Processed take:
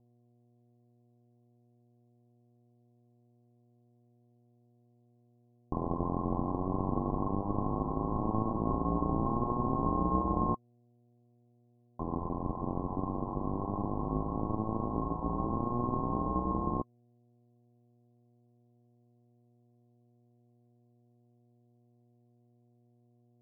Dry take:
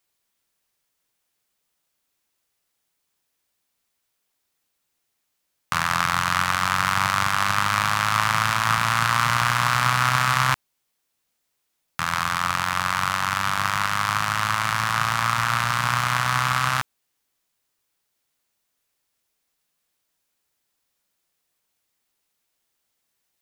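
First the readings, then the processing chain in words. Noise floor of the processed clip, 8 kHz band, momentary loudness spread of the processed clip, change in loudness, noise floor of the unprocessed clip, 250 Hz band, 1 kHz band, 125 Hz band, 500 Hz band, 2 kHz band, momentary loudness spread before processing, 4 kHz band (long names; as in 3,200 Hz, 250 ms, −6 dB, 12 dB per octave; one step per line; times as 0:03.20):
−67 dBFS, below −40 dB, 5 LU, −12.0 dB, −76 dBFS, +5.0 dB, −13.5 dB, −6.5 dB, +2.0 dB, below −40 dB, 4 LU, below −40 dB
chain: ring modulation 1,200 Hz
hum with harmonics 120 Hz, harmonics 6, −63 dBFS −7 dB per octave
Chebyshev low-pass with heavy ripple 1,100 Hz, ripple 6 dB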